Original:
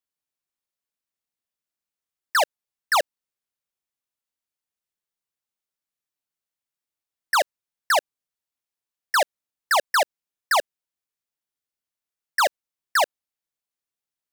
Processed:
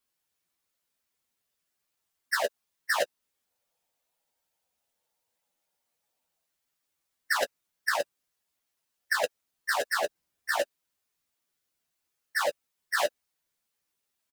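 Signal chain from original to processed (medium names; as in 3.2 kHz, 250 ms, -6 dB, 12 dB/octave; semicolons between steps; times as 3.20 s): phase randomisation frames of 50 ms; 3.46–6.45 s: time-frequency box 440–990 Hz +8 dB; 9.94–10.58 s: bass shelf 490 Hz +7 dB; compressor with a negative ratio -27 dBFS, ratio -1; doubling 12 ms -9 dB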